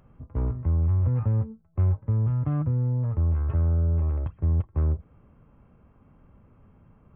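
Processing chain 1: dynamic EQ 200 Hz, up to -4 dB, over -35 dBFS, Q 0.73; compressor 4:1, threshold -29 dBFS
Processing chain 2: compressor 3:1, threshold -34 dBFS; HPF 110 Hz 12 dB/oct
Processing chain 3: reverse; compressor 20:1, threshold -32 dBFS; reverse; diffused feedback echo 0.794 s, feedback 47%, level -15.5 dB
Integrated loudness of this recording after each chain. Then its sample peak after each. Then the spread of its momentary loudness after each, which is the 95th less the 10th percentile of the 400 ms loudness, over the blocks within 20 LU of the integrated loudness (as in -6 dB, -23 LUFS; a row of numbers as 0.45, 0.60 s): -33.0, -39.0, -37.0 LUFS; -22.0, -24.0, -25.5 dBFS; 4, 7, 20 LU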